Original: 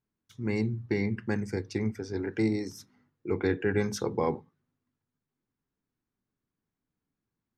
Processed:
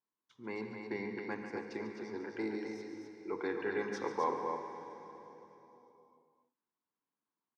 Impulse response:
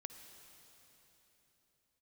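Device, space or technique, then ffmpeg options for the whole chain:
station announcement: -filter_complex "[0:a]highpass=310,lowpass=4400,equalizer=frequency=1000:width_type=o:width=0.49:gain=11,aecho=1:1:142.9|259.5:0.282|0.501[link_01];[1:a]atrim=start_sample=2205[link_02];[link_01][link_02]afir=irnorm=-1:irlink=0,volume=-3dB"

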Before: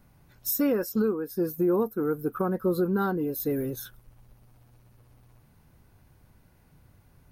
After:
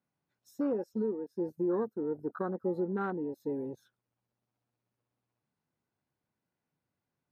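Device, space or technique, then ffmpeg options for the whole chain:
over-cleaned archive recording: -af "highpass=190,lowpass=6800,afwtdn=0.0251,volume=-6dB"

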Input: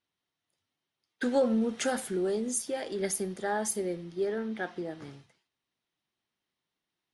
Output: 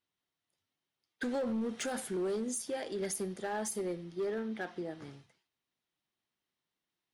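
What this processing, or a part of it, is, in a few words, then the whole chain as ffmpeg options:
limiter into clipper: -af "alimiter=limit=-23.5dB:level=0:latency=1:release=36,asoftclip=type=hard:threshold=-27dB,volume=-3dB"

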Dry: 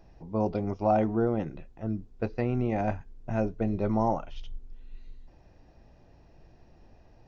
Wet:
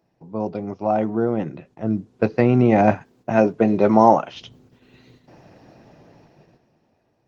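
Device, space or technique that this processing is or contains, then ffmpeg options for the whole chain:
video call: -filter_complex "[0:a]asplit=3[link_01][link_02][link_03];[link_01]afade=type=out:start_time=2.93:duration=0.02[link_04];[link_02]highpass=frequency=270:poles=1,afade=type=in:start_time=2.93:duration=0.02,afade=type=out:start_time=4.34:duration=0.02[link_05];[link_03]afade=type=in:start_time=4.34:duration=0.02[link_06];[link_04][link_05][link_06]amix=inputs=3:normalize=0,highpass=frequency=120:width=0.5412,highpass=frequency=120:width=1.3066,dynaudnorm=framelen=400:gausssize=9:maxgain=16.5dB,agate=range=-8dB:threshold=-53dB:ratio=16:detection=peak,volume=2dB" -ar 48000 -c:a libopus -b:a 20k

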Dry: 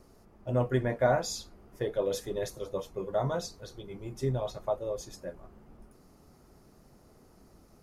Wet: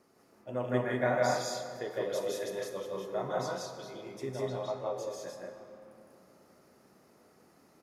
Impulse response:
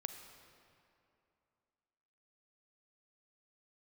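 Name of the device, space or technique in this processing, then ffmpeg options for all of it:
stadium PA: -filter_complex "[0:a]asettb=1/sr,asplit=3[link_01][link_02][link_03];[link_01]atrim=end=4.414[link_04];[link_02]atrim=start=4.41:end=4.95,asetpts=PTS-STARTPTS,afade=type=in:duration=0.004:curve=qsin,afade=type=out:start_time=0.536:duration=0.004:curve=qsin,lowpass=6900[link_05];[link_03]atrim=start=4.946[link_06];[link_04][link_05]acrossfade=duration=0.004:curve1=hsin:curve2=qsin[link_07];[link_07][link_06]acrossfade=duration=0.004:curve1=qsin:curve2=hsin,highpass=190,equalizer=frequency=1900:width_type=o:width=1.4:gain=5,aecho=1:1:160.3|192.4:0.891|0.891[link_08];[1:a]atrim=start_sample=2205[link_09];[link_08][link_09]afir=irnorm=-1:irlink=0,volume=-4dB"

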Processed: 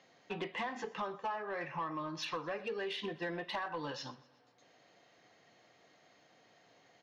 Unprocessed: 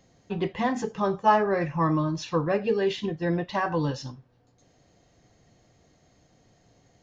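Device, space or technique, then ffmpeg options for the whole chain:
AM radio: -af "highpass=110,lowpass=3300,highpass=frequency=1300:poles=1,acompressor=threshold=-40dB:ratio=10,asoftclip=type=tanh:threshold=-35dB,aecho=1:1:123|246|369|492:0.0841|0.0446|0.0236|0.0125,volume=6dB"

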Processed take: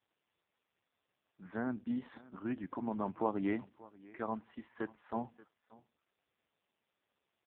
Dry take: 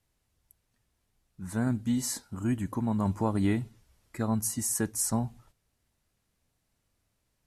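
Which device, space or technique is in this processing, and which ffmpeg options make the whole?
satellite phone: -filter_complex "[0:a]asplit=3[link_01][link_02][link_03];[link_01]afade=type=out:start_time=4.18:duration=0.02[link_04];[link_02]lowshelf=frequency=480:gain=-4,afade=type=in:start_time=4.18:duration=0.02,afade=type=out:start_time=5.15:duration=0.02[link_05];[link_03]afade=type=in:start_time=5.15:duration=0.02[link_06];[link_04][link_05][link_06]amix=inputs=3:normalize=0,highpass=330,lowpass=3400,aecho=1:1:581:0.0891,volume=-1.5dB" -ar 8000 -c:a libopencore_amrnb -b:a 4750

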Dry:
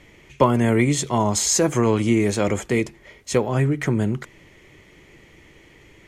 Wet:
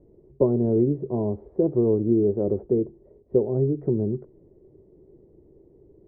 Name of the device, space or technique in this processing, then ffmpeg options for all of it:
under water: -af "lowpass=frequency=600:width=0.5412,lowpass=frequency=600:width=1.3066,equalizer=frequency=390:width_type=o:width=0.38:gain=10,volume=-5dB"

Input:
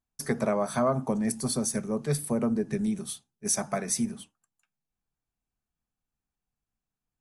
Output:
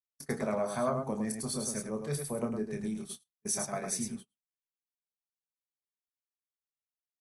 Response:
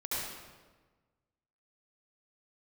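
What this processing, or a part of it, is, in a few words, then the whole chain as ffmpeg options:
slapback doubling: -filter_complex "[0:a]asplit=3[link_01][link_02][link_03];[link_02]adelay=28,volume=-6.5dB[link_04];[link_03]adelay=106,volume=-5dB[link_05];[link_01][link_04][link_05]amix=inputs=3:normalize=0,adynamicequalizer=threshold=0.0158:dfrequency=190:dqfactor=1.2:tfrequency=190:tqfactor=1.2:attack=5:release=100:ratio=0.375:range=2:mode=cutabove:tftype=bell,agate=range=-33dB:threshold=-35dB:ratio=16:detection=peak,volume=-6.5dB"

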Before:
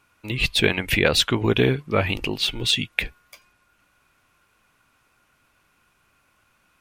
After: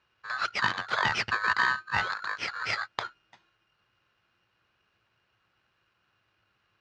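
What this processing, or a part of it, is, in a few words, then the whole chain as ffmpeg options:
ring modulator pedal into a guitar cabinet: -af "aeval=exprs='val(0)*sgn(sin(2*PI*1400*n/s))':channel_layout=same,highpass=76,equalizer=frequency=110:width_type=q:width=4:gain=9,equalizer=frequency=280:width_type=q:width=4:gain=-8,equalizer=frequency=1600:width_type=q:width=4:gain=4,equalizer=frequency=3800:width_type=q:width=4:gain=-7,lowpass=frequency=4500:width=0.5412,lowpass=frequency=4500:width=1.3066,volume=-7.5dB"

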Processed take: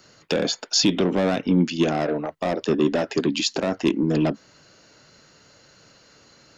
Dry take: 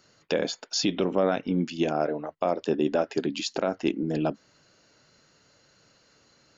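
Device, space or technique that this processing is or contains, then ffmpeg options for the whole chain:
one-band saturation: -filter_complex "[0:a]acrossover=split=300|3100[link_01][link_02][link_03];[link_02]asoftclip=type=tanh:threshold=-29.5dB[link_04];[link_01][link_04][link_03]amix=inputs=3:normalize=0,volume=8dB"

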